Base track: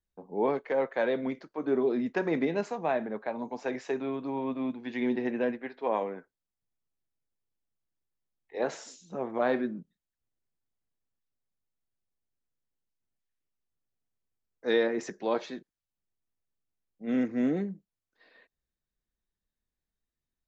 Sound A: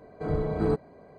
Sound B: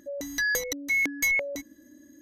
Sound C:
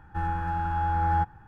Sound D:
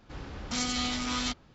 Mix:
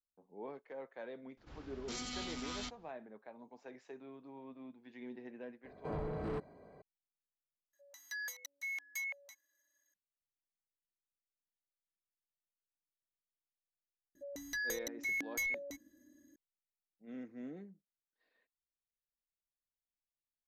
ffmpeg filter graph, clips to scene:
ffmpeg -i bed.wav -i cue0.wav -i cue1.wav -i cue2.wav -i cue3.wav -filter_complex "[2:a]asplit=2[link_01][link_02];[0:a]volume=-19dB[link_03];[1:a]asoftclip=type=tanh:threshold=-28.5dB[link_04];[link_01]highpass=frequency=810:width=0.5412,highpass=frequency=810:width=1.3066[link_05];[link_03]asplit=2[link_06][link_07];[link_06]atrim=end=7.734[link_08];[link_05]atrim=end=2.21,asetpts=PTS-STARTPTS,volume=-16dB[link_09];[link_07]atrim=start=9.936[link_10];[4:a]atrim=end=1.54,asetpts=PTS-STARTPTS,volume=-12dB,afade=type=in:duration=0.004:curve=hsin,afade=type=out:start_time=1.536:duration=0.004:curve=hsin,adelay=1370[link_11];[link_04]atrim=end=1.18,asetpts=PTS-STARTPTS,volume=-7dB,afade=type=in:duration=0.004:curve=hsin,afade=type=out:start_time=1.176:duration=0.004:curve=hsin,adelay=5640[link_12];[link_02]atrim=end=2.21,asetpts=PTS-STARTPTS,volume=-12dB,afade=type=in:duration=0.004:curve=hsin,afade=type=out:start_time=2.206:duration=0.004:curve=hsin,adelay=14150[link_13];[link_08][link_09]acrossfade=duration=0.004:curve1=hsin:curve2=hsin[link_14];[link_14][link_10]acrossfade=duration=0.004:curve1=hsin:curve2=hsin[link_15];[link_15][link_11][link_12][link_13]amix=inputs=4:normalize=0" out.wav

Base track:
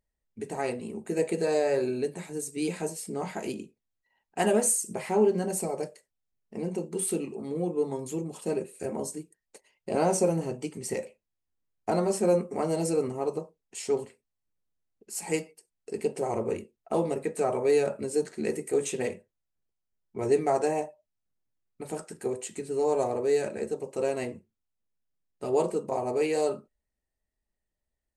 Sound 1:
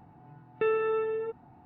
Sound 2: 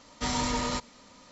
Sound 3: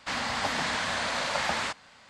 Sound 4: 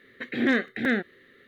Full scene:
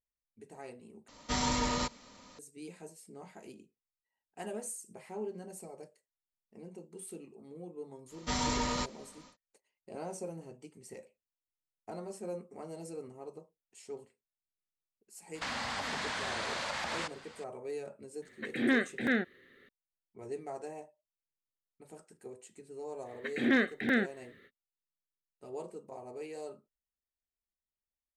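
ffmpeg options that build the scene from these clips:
ffmpeg -i bed.wav -i cue0.wav -i cue1.wav -i cue2.wav -i cue3.wav -filter_complex "[2:a]asplit=2[link_01][link_02];[4:a]asplit=2[link_03][link_04];[0:a]volume=-16.5dB[link_05];[3:a]acompressor=threshold=-33dB:ratio=6:attack=3.2:release=140:knee=1:detection=peak[link_06];[link_05]asplit=2[link_07][link_08];[link_07]atrim=end=1.084[link_09];[link_01]atrim=end=1.31,asetpts=PTS-STARTPTS,volume=-2dB[link_10];[link_08]atrim=start=2.386[link_11];[link_02]atrim=end=1.31,asetpts=PTS-STARTPTS,volume=-3dB,afade=type=in:duration=0.1,afade=type=out:start_time=1.21:duration=0.1,adelay=8060[link_12];[link_06]atrim=end=2.09,asetpts=PTS-STARTPTS,afade=type=in:duration=0.004:curve=hsin,afade=type=out:start_time=2.086:duration=0.004:curve=hsin,adelay=15350[link_13];[link_03]atrim=end=1.47,asetpts=PTS-STARTPTS,volume=-5dB,afade=type=in:duration=0.004:curve=hsin,afade=type=out:start_time=1.466:duration=0.004:curve=hsin,adelay=18220[link_14];[link_04]atrim=end=1.47,asetpts=PTS-STARTPTS,volume=-4dB,afade=type=in:duration=0.05,afade=type=out:start_time=1.42:duration=0.05,adelay=23040[link_15];[link_09][link_10]acrossfade=duration=0.004:curve1=hsin:curve2=hsin[link_16];[link_16][link_11]acrossfade=duration=0.004:curve1=hsin:curve2=hsin[link_17];[link_17][link_12][link_13][link_14][link_15]amix=inputs=5:normalize=0" out.wav

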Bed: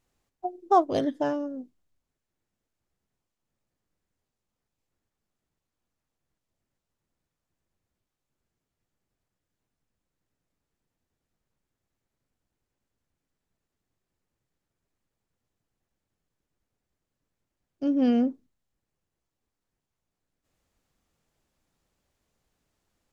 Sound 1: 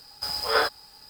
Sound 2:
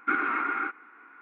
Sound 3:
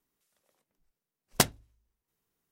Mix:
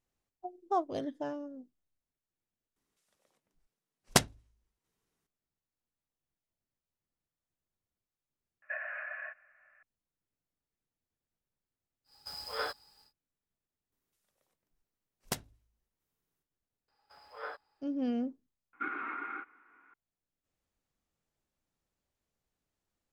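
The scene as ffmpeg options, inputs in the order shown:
ffmpeg -i bed.wav -i cue0.wav -i cue1.wav -i cue2.wav -filter_complex "[3:a]asplit=2[link_01][link_02];[2:a]asplit=2[link_03][link_04];[1:a]asplit=2[link_05][link_06];[0:a]volume=-10.5dB[link_07];[link_01]lowpass=10000[link_08];[link_03]highpass=frequency=220:width_type=q:width=0.5412,highpass=frequency=220:width_type=q:width=1.307,lowpass=frequency=2100:width_type=q:width=0.5176,lowpass=frequency=2100:width_type=q:width=0.7071,lowpass=frequency=2100:width_type=q:width=1.932,afreqshift=310[link_09];[link_02]alimiter=limit=-11.5dB:level=0:latency=1:release=203[link_10];[link_06]acrossover=split=360 2600:gain=0.224 1 0.1[link_11][link_12][link_13];[link_11][link_12][link_13]amix=inputs=3:normalize=0[link_14];[link_07]asplit=2[link_15][link_16];[link_15]atrim=end=2.764[link_17];[link_08]atrim=end=2.51,asetpts=PTS-STARTPTS,volume=-0.5dB[link_18];[link_16]atrim=start=5.266[link_19];[link_09]atrim=end=1.21,asetpts=PTS-STARTPTS,volume=-12.5dB,afade=type=in:duration=0.004:curve=hsin,afade=type=out:start_time=1.206:duration=0.004:curve=hsin,adelay=8620[link_20];[link_05]atrim=end=1.09,asetpts=PTS-STARTPTS,volume=-13.5dB,afade=type=in:duration=0.1,afade=type=out:start_time=0.99:duration=0.1,adelay=12040[link_21];[link_10]atrim=end=2.51,asetpts=PTS-STARTPTS,volume=-5.5dB,afade=type=in:duration=0.004:curve=hsin,afade=type=out:start_time=2.506:duration=0.004:curve=hsin,adelay=13920[link_22];[link_14]atrim=end=1.09,asetpts=PTS-STARTPTS,volume=-18dB,afade=type=in:duration=0.004:curve=hsin,afade=type=out:start_time=1.086:duration=0.004:curve=hsin,adelay=16880[link_23];[link_04]atrim=end=1.21,asetpts=PTS-STARTPTS,volume=-11dB,afade=type=in:duration=0.004:curve=hsin,afade=type=out:start_time=1.206:duration=0.004:curve=hsin,adelay=18730[link_24];[link_17][link_18]acrossfade=duration=0.004:curve1=hsin:curve2=hsin[link_25];[link_25][link_19]acrossfade=duration=0.004:curve1=hsin:curve2=hsin[link_26];[link_26][link_20][link_21][link_22][link_23][link_24]amix=inputs=6:normalize=0" out.wav

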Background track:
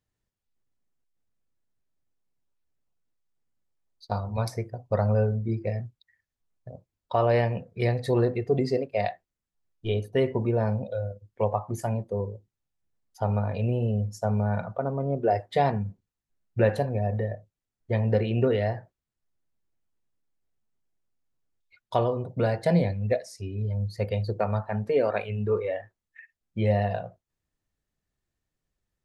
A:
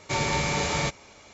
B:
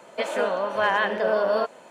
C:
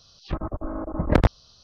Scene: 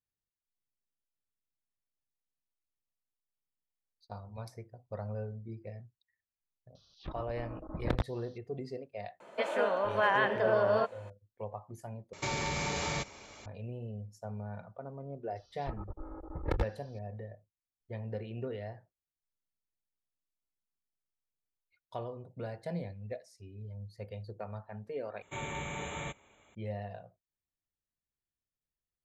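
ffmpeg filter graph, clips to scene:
ffmpeg -i bed.wav -i cue0.wav -i cue1.wav -i cue2.wav -filter_complex "[3:a]asplit=2[link_01][link_02];[1:a]asplit=2[link_03][link_04];[0:a]volume=-15.5dB[link_05];[link_01]equalizer=frequency=3600:width=4.3:gain=7.5[link_06];[2:a]bass=frequency=250:gain=-2,treble=frequency=4000:gain=-8[link_07];[link_03]acompressor=threshold=-29dB:ratio=6:attack=3.2:release=140:knee=1:detection=peak[link_08];[link_02]aecho=1:1:2.3:0.84[link_09];[link_04]asuperstop=centerf=5000:order=8:qfactor=1.7[link_10];[link_05]asplit=3[link_11][link_12][link_13];[link_11]atrim=end=12.134[link_14];[link_08]atrim=end=1.33,asetpts=PTS-STARTPTS,volume=-1dB[link_15];[link_12]atrim=start=13.456:end=25.224[link_16];[link_10]atrim=end=1.33,asetpts=PTS-STARTPTS,volume=-12.5dB[link_17];[link_13]atrim=start=26.546[link_18];[link_06]atrim=end=1.63,asetpts=PTS-STARTPTS,volume=-14dB,afade=type=in:duration=0.004:curve=hsin,afade=type=out:start_time=1.626:duration=0.004:curve=hsin,adelay=6750[link_19];[link_07]atrim=end=1.9,asetpts=PTS-STARTPTS,volume=-5dB,afade=type=in:duration=0.004:curve=hsin,afade=type=out:start_time=1.896:duration=0.004:curve=hsin,adelay=9200[link_20];[link_09]atrim=end=1.63,asetpts=PTS-STARTPTS,volume=-16dB,afade=type=in:duration=0.004:curve=hsin,afade=type=out:start_time=1.626:duration=0.004:curve=hsin,adelay=15360[link_21];[link_14][link_15]acrossfade=duration=0.004:curve1=hsin:curve2=hsin[link_22];[link_22][link_16]acrossfade=duration=0.004:curve1=hsin:curve2=hsin[link_23];[link_23][link_17]acrossfade=duration=0.004:curve1=hsin:curve2=hsin[link_24];[link_24][link_18]acrossfade=duration=0.004:curve1=hsin:curve2=hsin[link_25];[link_25][link_19][link_20][link_21]amix=inputs=4:normalize=0" out.wav

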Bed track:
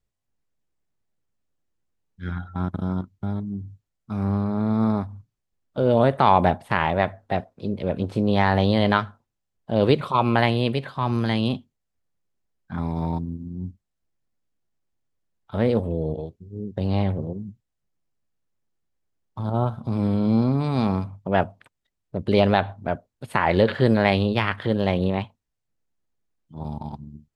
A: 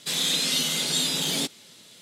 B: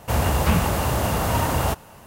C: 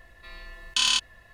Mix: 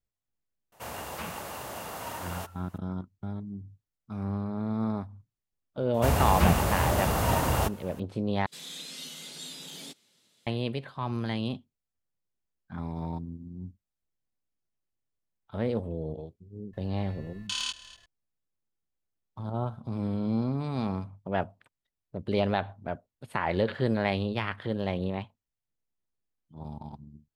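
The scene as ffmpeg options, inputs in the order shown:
ffmpeg -i bed.wav -i cue0.wav -i cue1.wav -i cue2.wav -filter_complex "[2:a]asplit=2[link_01][link_02];[0:a]volume=-8.5dB[link_03];[link_01]highpass=frequency=480:poles=1[link_04];[3:a]aecho=1:1:241|482:0.126|0.0302[link_05];[link_03]asplit=2[link_06][link_07];[link_06]atrim=end=8.464[link_08];[1:a]atrim=end=2.01,asetpts=PTS-STARTPTS,volume=-17dB[link_09];[link_07]atrim=start=10.466[link_10];[link_04]atrim=end=2.06,asetpts=PTS-STARTPTS,volume=-12.5dB,afade=type=in:duration=0.004:curve=hsin,afade=type=out:start_time=2.056:duration=0.004:curve=hsin,adelay=720[link_11];[link_02]atrim=end=2.06,asetpts=PTS-STARTPTS,volume=-4dB,afade=type=in:duration=0.004:curve=hsin,afade=type=out:start_time=2.056:duration=0.004:curve=hsin,adelay=5940[link_12];[link_05]atrim=end=1.33,asetpts=PTS-STARTPTS,volume=-10dB,afade=type=in:duration=0.004:curve=hsin,afade=type=out:start_time=1.326:duration=0.004:curve=hsin,adelay=16730[link_13];[link_08][link_09]acrossfade=duration=0.004:curve1=hsin:curve2=hsin[link_14];[link_14][link_10]acrossfade=duration=0.004:curve1=hsin:curve2=hsin[link_15];[link_15][link_11][link_12][link_13]amix=inputs=4:normalize=0" out.wav

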